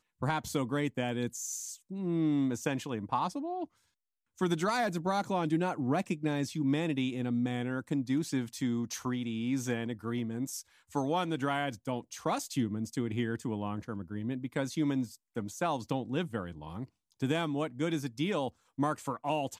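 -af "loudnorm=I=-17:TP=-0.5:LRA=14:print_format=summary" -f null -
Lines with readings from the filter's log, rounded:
Input Integrated:    -33.6 LUFS
Input True Peak:     -16.8 dBTP
Input LRA:             2.9 LU
Input Threshold:     -43.8 LUFS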